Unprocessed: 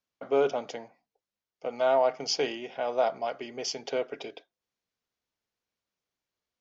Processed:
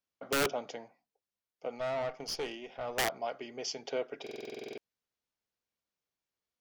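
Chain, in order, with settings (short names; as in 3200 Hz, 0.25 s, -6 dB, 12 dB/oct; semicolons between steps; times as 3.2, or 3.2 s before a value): 1.78–2.98 tube stage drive 26 dB, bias 0.5; wrapped overs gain 19 dB; stuck buffer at 4.22, samples 2048, times 11; gain -4.5 dB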